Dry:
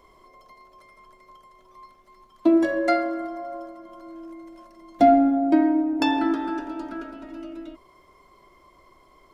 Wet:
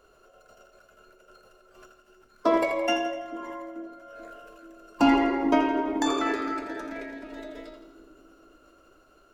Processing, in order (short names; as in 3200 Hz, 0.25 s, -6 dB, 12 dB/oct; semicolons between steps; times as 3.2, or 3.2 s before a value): formant shift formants +5 st; split-band echo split 410 Hz, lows 0.434 s, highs 83 ms, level -9 dB; gain -4.5 dB